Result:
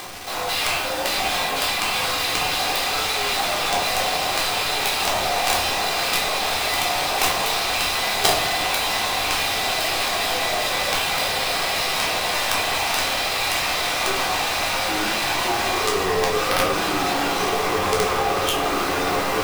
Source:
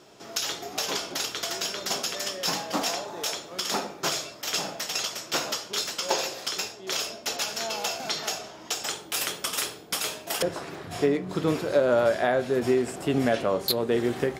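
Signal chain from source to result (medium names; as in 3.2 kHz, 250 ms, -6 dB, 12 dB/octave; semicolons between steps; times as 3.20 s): fade out at the end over 0.88 s; on a send: echo that smears into a reverb 1299 ms, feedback 57%, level -3.5 dB; on the sum: hard clipper -17 dBFS, distortion -18 dB; resonant low shelf 690 Hz -12.5 dB, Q 3; speed mistake 45 rpm record played at 33 rpm; in parallel at +1 dB: peak limiter -22 dBFS, peak gain reduction 10 dB; on the sum: cabinet simulation 170–5000 Hz, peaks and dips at 220 Hz -6 dB, 370 Hz +10 dB, 910 Hz -5 dB; upward compressor, threshold -38 dBFS; companded quantiser 2-bit; simulated room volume 440 m³, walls furnished, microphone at 3.7 m; trim -3 dB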